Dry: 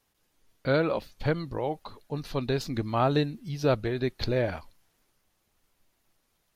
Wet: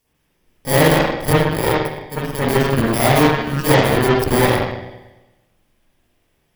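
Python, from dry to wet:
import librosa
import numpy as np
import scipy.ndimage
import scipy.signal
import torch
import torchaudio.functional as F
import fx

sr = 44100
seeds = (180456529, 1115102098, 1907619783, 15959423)

y = fx.bit_reversed(x, sr, seeds[0], block=32)
y = fx.rev_spring(y, sr, rt60_s=1.1, pass_ms=(44, 57), chirp_ms=65, drr_db=-9.5)
y = fx.cheby_harmonics(y, sr, harmonics=(8,), levels_db=(-15,), full_scale_db=-4.0)
y = y * librosa.db_to_amplitude(2.5)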